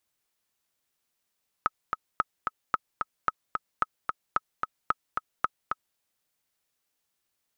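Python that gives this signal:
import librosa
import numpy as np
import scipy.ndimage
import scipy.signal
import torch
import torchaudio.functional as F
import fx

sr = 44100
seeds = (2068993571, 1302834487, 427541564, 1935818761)

y = fx.click_track(sr, bpm=222, beats=2, bars=8, hz=1280.0, accent_db=4.5, level_db=-10.0)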